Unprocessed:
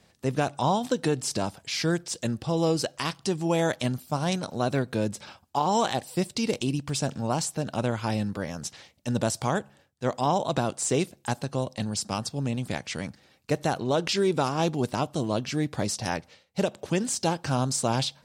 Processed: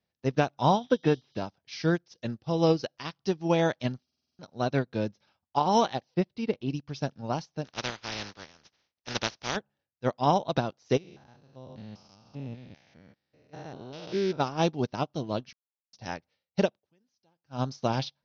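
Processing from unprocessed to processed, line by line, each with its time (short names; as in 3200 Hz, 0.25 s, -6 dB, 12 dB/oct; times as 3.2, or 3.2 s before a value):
0.84–1.37 spectral repair 2900–8800 Hz
4.04 stutter in place 0.05 s, 7 plays
6.14–6.7 air absorption 240 m
7.64–9.55 spectral contrast lowered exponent 0.28
10.97–14.4 stepped spectrum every 0.2 s
15.53–15.93 mute
16.68–17.61 dip -20 dB, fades 0.13 s
whole clip: steep low-pass 6100 Hz 96 dB/oct; notch 1100 Hz, Q 24; upward expander 2.5:1, over -39 dBFS; gain +3.5 dB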